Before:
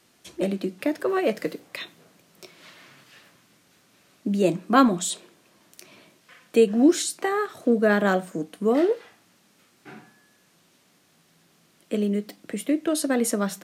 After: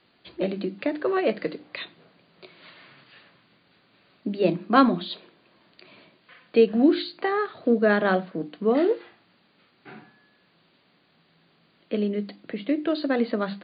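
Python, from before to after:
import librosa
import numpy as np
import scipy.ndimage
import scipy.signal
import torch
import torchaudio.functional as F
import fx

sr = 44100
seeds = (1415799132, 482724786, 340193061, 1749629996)

y = fx.brickwall_lowpass(x, sr, high_hz=4800.0)
y = fx.hum_notches(y, sr, base_hz=50, count=7)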